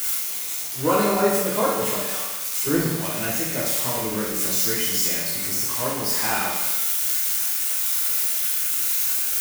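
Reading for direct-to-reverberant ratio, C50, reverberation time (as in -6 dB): -7.0 dB, 1.0 dB, 1.1 s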